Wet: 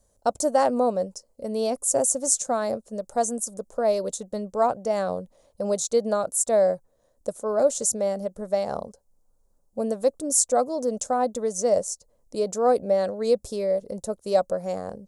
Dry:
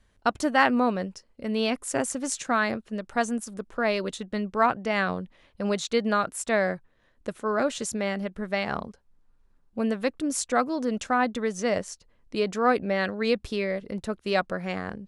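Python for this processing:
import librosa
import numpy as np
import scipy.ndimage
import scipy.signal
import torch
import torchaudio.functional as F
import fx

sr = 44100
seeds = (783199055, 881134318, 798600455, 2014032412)

y = fx.curve_eq(x, sr, hz=(360.0, 550.0, 1800.0, 2800.0, 6900.0), db=(0, 12, -12, -12, 14))
y = F.gain(torch.from_numpy(y), -3.5).numpy()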